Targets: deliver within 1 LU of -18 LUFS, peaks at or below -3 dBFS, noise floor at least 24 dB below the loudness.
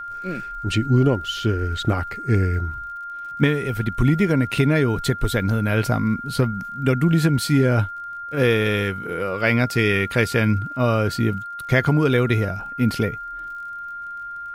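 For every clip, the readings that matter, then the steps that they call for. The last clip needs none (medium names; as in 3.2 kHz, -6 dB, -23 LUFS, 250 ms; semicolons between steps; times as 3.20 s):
tick rate 40 per s; steady tone 1.4 kHz; tone level -30 dBFS; loudness -21.0 LUFS; peak level -4.0 dBFS; loudness target -18.0 LUFS
-> de-click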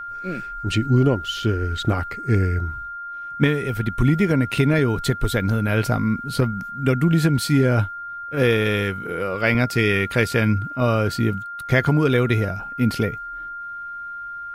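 tick rate 0.21 per s; steady tone 1.4 kHz; tone level -30 dBFS
-> band-stop 1.4 kHz, Q 30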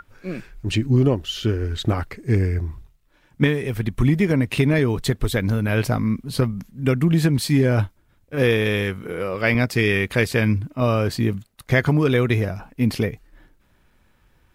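steady tone not found; loudness -21.5 LUFS; peak level -4.0 dBFS; loudness target -18.0 LUFS
-> trim +3.5 dB; peak limiter -3 dBFS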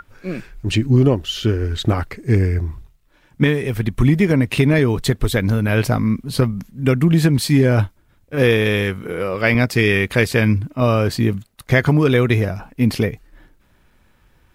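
loudness -18.0 LUFS; peak level -3.0 dBFS; noise floor -57 dBFS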